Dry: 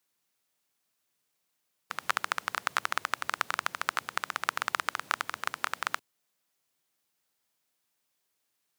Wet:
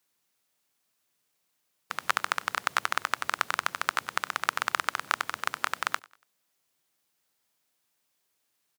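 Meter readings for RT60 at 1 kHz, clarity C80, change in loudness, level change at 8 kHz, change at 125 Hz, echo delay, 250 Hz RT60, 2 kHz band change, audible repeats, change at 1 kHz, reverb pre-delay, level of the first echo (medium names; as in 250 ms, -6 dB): no reverb, no reverb, +2.5 dB, +2.5 dB, +2.5 dB, 95 ms, no reverb, +2.5 dB, 2, +2.5 dB, no reverb, -23.5 dB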